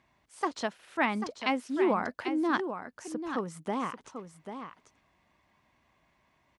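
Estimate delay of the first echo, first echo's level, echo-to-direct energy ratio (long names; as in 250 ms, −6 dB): 791 ms, −9.0 dB, −9.0 dB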